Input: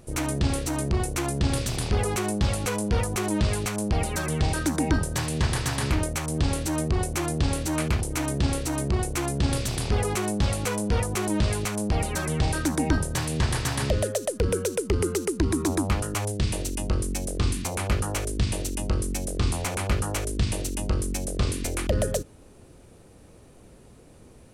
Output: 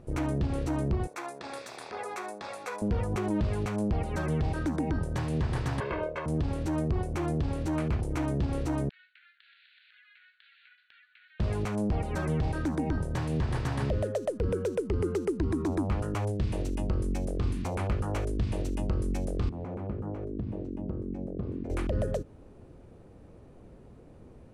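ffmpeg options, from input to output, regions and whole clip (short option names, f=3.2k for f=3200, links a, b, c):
-filter_complex "[0:a]asettb=1/sr,asplit=3[a][b][c];[a]atrim=end=1.074[d];[b]atrim=start=1.07:end=2.82,asetpts=PTS-STARTPTS,afade=t=in:d=0.004:c=qsin,afade=t=out:st=1.746:d=0.004:c=qsin,highpass=750,bandreject=f=3k:w=5.6[e];[c]atrim=start=2.816[f];[d][e]acrossfade=d=0.004:c1=hsin:c2=qsin[g];[g][f]acrossfade=d=0.004:c1=qsin:c2=hsin,asettb=1/sr,asplit=3[h][i][j];[h]atrim=end=5.804[k];[i]atrim=start=5.8:end=6.26,asetpts=PTS-STARTPTS,afade=t=in:d=0.004:c=qsin,afade=t=out:st=0.456:d=0.004:c=qsin,acrossover=split=240 3400:gain=0.0794 1 0.0708[l][m][n];[l][m][n]amix=inputs=3:normalize=0,aecho=1:1:1.9:0.88,atrim=end_sample=20286[o];[j]atrim=start=6.256[p];[k][o]acrossfade=d=0.004:c1=hsin:c2=qsin[q];[q][p]acrossfade=d=0.004:c1=qsin:c2=hsin,asettb=1/sr,asplit=3[r][s][t];[r]atrim=end=8.894[u];[s]atrim=start=8.89:end=11.4,asetpts=PTS-STARTPTS,afade=t=in:d=0.004:c=qsin,afade=t=out:st=2.506:d=0.004:c=qsin,asuperpass=centerf=2500:order=20:qfactor=0.88,acompressor=threshold=-48dB:ratio=8:attack=3.2:release=140:knee=1:detection=peak[v];[t]atrim=start=11.396[w];[u][v]acrossfade=d=0.004:c1=hsin:c2=qsin[x];[x][w]acrossfade=d=0.004:c1=qsin:c2=hsin,asettb=1/sr,asplit=3[y][z][aa];[y]atrim=end=19.494[ab];[z]atrim=start=19.49:end=21.7,asetpts=PTS-STARTPTS,afade=t=in:d=0.004:c=qsin,afade=t=out:st=2.206:d=0.004:c=qsin,acompressor=threshold=-25dB:ratio=3:attack=3.2:release=140:knee=1:detection=peak,bandpass=f=250:t=q:w=0.75[ac];[aa]atrim=start=21.696[ad];[ab][ac]acrossfade=d=0.004:c1=hsin:c2=qsin[ae];[ae][ad]acrossfade=d=0.004:c1=qsin:c2=hsin,lowpass=f=1k:p=1,alimiter=limit=-20.5dB:level=0:latency=1:release=165"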